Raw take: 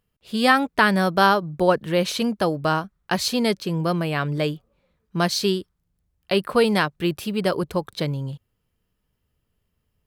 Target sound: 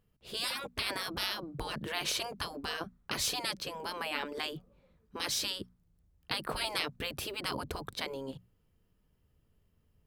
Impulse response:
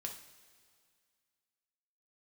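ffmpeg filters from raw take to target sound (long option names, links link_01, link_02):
-af "afftfilt=real='re*lt(hypot(re,im),0.141)':imag='im*lt(hypot(re,im),0.141)':win_size=1024:overlap=0.75,tiltshelf=frequency=720:gain=3.5,bandreject=frequency=60:width_type=h:width=6,bandreject=frequency=120:width_type=h:width=6,bandreject=frequency=180:width_type=h:width=6,bandreject=frequency=240:width_type=h:width=6"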